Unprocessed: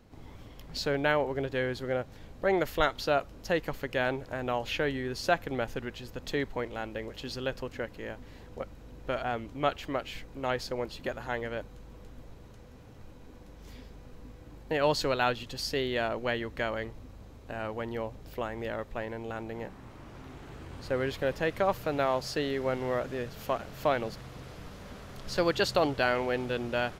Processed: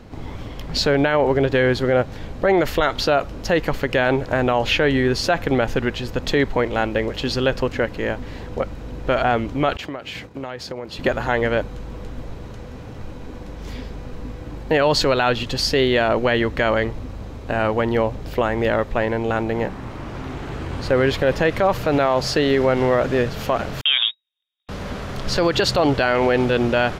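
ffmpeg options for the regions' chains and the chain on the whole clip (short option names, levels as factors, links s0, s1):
-filter_complex "[0:a]asettb=1/sr,asplit=3[s0][s1][s2];[s0]atrim=end=9.774[s3];[s1]atrim=start=9.77:end=10.99,asetpts=PTS-STARTPTS,afade=t=in:d=0.004:c=qsin,afade=t=out:st=1.216:d=0.004:c=qsin,agate=range=0.0224:threshold=0.00891:ratio=3:release=100:detection=peak,highpass=f=75:w=0.5412,highpass=f=75:w=1.3066,acompressor=threshold=0.00794:ratio=10:attack=3.2:release=140:knee=1:detection=peak[s4];[s2]atrim=start=10.986[s5];[s3][s4]acrossfade=d=0.004:c1=hsin:c2=qsin[s6];[s6][s5]acrossfade=d=0.004:c1=qsin:c2=hsin,asettb=1/sr,asplit=3[s7][s8][s9];[s7]atrim=end=23.814[s10];[s8]atrim=start=23.81:end=24.69,asetpts=PTS-STARTPTS,afade=t=in:d=0.004:c=qsin,afade=t=out:st=0.876:d=0.004:c=qsin,aemphasis=mode=reproduction:type=75kf,agate=range=0.00178:threshold=0.0126:ratio=16:release=100:detection=peak,lowpass=f=3200:t=q:w=0.5098,lowpass=f=3200:t=q:w=0.6013,lowpass=f=3200:t=q:w=0.9,lowpass=f=3200:t=q:w=2.563,afreqshift=-3800[s11];[s9]atrim=start=24.686[s12];[s10][s11]acrossfade=d=0.004:c1=hsin:c2=qsin[s13];[s13][s12]acrossfade=d=0.004:c1=qsin:c2=hsin,highshelf=f=8400:g=-11.5,alimiter=level_in=14.1:limit=0.891:release=50:level=0:latency=1,volume=0.447"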